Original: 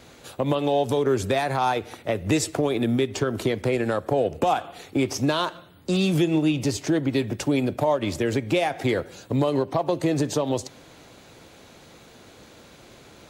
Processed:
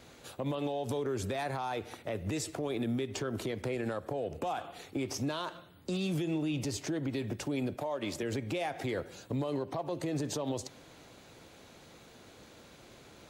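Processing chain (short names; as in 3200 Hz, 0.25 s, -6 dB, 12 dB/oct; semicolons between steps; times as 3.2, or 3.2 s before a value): 7.75–8.23 HPF 240 Hz 6 dB/oct; limiter -20 dBFS, peak gain reduction 10 dB; gain -6 dB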